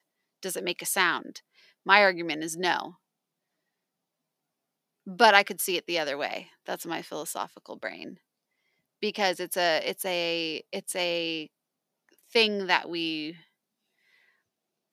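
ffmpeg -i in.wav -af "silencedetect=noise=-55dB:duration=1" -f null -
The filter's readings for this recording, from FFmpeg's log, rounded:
silence_start: 2.96
silence_end: 5.06 | silence_duration: 2.10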